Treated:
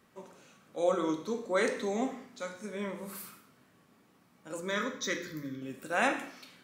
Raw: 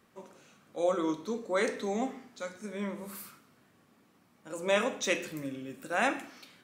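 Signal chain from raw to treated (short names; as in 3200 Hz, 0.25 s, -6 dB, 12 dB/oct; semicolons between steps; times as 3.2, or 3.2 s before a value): 4.6–5.62 fixed phaser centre 2700 Hz, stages 6; non-linear reverb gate 0.22 s falling, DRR 8.5 dB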